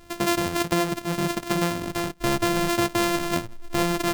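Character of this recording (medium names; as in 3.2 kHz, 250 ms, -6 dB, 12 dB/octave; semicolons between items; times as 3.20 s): a buzz of ramps at a fixed pitch in blocks of 128 samples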